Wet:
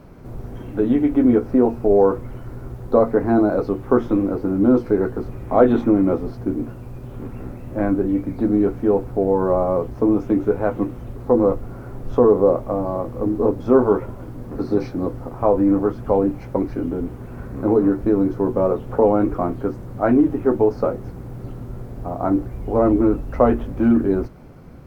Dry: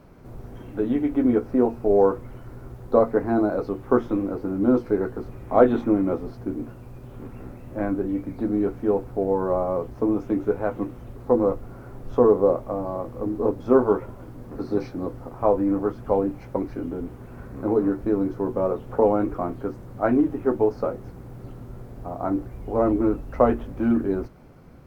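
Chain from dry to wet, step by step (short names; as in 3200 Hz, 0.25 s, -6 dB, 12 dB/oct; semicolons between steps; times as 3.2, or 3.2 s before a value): low shelf 440 Hz +3 dB; in parallel at 0 dB: limiter -13 dBFS, peak gain reduction 11.5 dB; on the sum: gain -2 dB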